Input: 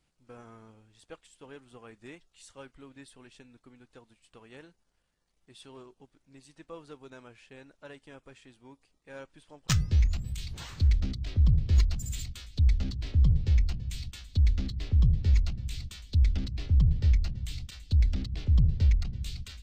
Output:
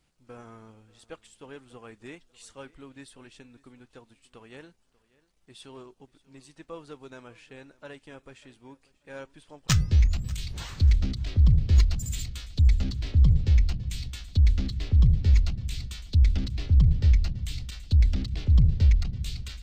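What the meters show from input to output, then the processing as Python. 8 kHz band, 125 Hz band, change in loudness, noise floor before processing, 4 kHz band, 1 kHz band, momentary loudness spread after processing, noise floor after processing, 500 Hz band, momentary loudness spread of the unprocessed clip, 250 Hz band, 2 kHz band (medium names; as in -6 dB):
+3.5 dB, +3.5 dB, +3.5 dB, -75 dBFS, +3.5 dB, +3.5 dB, 15 LU, -68 dBFS, +3.5 dB, 16 LU, +3.5 dB, +3.5 dB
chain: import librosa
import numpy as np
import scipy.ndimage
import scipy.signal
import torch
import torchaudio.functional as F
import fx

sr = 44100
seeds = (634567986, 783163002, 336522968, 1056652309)

y = fx.echo_feedback(x, sr, ms=590, feedback_pct=27, wet_db=-22.0)
y = y * librosa.db_to_amplitude(3.5)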